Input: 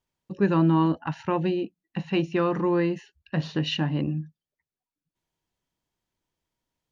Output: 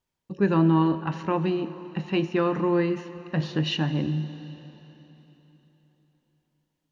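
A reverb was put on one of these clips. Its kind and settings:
dense smooth reverb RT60 3.8 s, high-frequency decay 0.9×, DRR 11 dB

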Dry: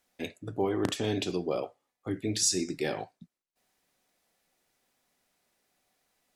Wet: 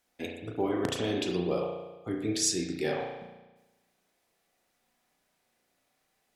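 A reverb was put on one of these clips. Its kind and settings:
spring reverb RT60 1.1 s, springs 34 ms, chirp 45 ms, DRR 1 dB
level −1.5 dB

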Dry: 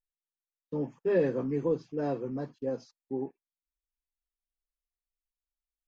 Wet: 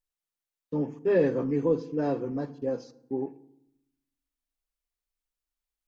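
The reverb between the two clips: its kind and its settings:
feedback delay network reverb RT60 0.76 s, low-frequency decay 1.5×, high-frequency decay 0.6×, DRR 13.5 dB
level +3 dB

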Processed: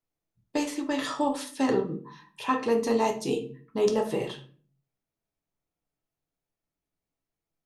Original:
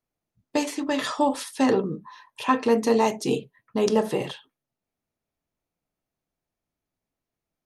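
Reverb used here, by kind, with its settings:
rectangular room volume 34 cubic metres, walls mixed, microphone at 0.33 metres
level −5 dB

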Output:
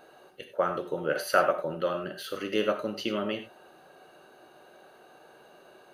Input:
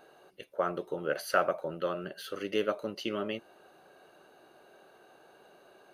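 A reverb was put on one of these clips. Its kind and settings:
reverb whose tail is shaped and stops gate 120 ms flat, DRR 6 dB
level +3 dB

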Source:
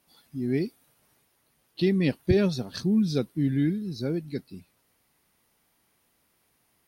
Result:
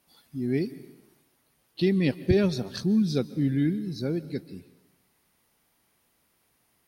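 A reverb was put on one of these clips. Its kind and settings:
dense smooth reverb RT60 1 s, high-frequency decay 1×, pre-delay 120 ms, DRR 17.5 dB

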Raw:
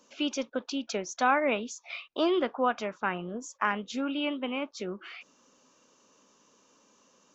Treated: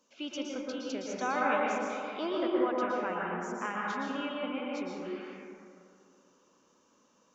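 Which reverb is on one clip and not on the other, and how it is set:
dense smooth reverb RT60 2.5 s, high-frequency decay 0.25×, pre-delay 105 ms, DRR −4.5 dB
level −9 dB

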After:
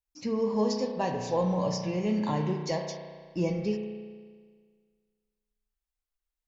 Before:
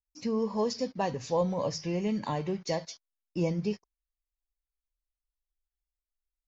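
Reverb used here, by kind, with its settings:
spring reverb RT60 1.7 s, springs 33 ms, chirp 45 ms, DRR 3.5 dB

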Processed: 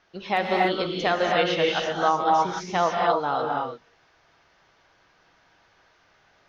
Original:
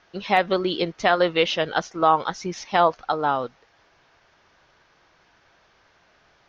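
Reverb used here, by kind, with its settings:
reverb whose tail is shaped and stops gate 320 ms rising, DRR −1.5 dB
level −5 dB

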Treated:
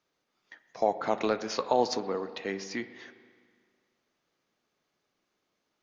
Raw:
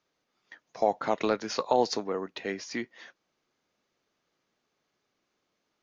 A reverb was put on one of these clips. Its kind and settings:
spring reverb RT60 1.9 s, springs 36/41 ms, chirp 25 ms, DRR 11.5 dB
level −1 dB

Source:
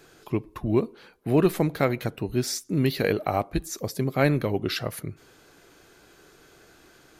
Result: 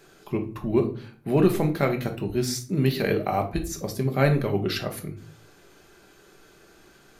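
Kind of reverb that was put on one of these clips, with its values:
rectangular room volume 360 cubic metres, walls furnished, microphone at 1.2 metres
level −1.5 dB

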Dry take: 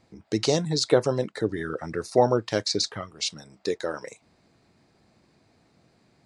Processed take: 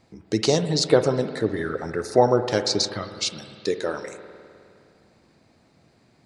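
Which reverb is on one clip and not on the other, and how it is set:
spring reverb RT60 2.4 s, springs 51 ms, chirp 75 ms, DRR 9 dB
level +2.5 dB

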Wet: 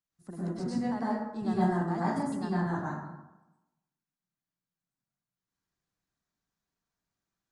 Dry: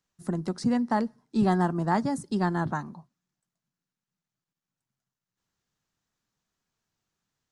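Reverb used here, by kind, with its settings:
dense smooth reverb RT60 0.97 s, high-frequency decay 0.45×, pre-delay 90 ms, DRR −8.5 dB
level −14 dB

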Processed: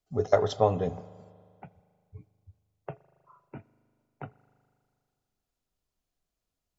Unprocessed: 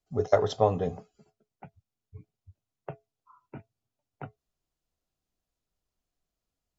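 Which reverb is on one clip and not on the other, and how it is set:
spring reverb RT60 2.2 s, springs 39 ms, chirp 60 ms, DRR 18.5 dB

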